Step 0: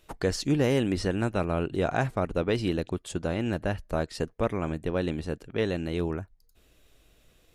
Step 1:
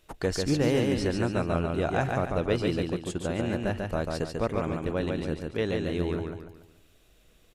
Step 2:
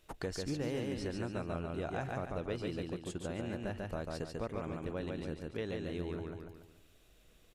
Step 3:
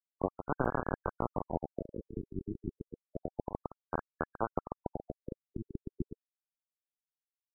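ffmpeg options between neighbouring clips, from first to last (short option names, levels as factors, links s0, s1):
-af "aecho=1:1:143|286|429|572|715:0.668|0.261|0.102|0.0396|0.0155,volume=0.841"
-af "acompressor=threshold=0.0141:ratio=2,volume=0.668"
-af "adynamicsmooth=sensitivity=4.5:basefreq=4700,acrusher=bits=4:mix=0:aa=0.000001,afftfilt=real='re*lt(b*sr/1024,390*pow(1700/390,0.5+0.5*sin(2*PI*0.3*pts/sr)))':imag='im*lt(b*sr/1024,390*pow(1700/390,0.5+0.5*sin(2*PI*0.3*pts/sr)))':win_size=1024:overlap=0.75,volume=2.24"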